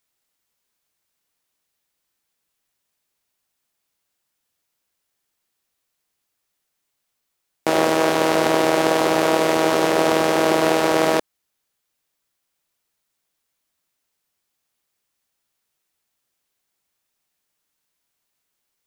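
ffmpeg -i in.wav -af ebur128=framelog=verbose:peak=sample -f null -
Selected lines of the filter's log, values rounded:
Integrated loudness:
  I:         -18.4 LUFS
  Threshold: -28.5 LUFS
Loudness range:
  LRA:         9.4 LU
  Threshold: -40.6 LUFS
  LRA low:   -27.4 LUFS
  LRA high:  -18.0 LUFS
Sample peak:
  Peak:       -2.8 dBFS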